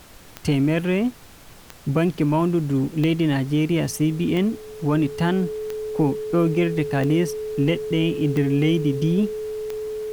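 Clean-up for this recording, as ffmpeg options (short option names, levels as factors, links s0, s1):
-af "adeclick=t=4,bandreject=f=430:w=30,afftdn=nr=24:nf=-44"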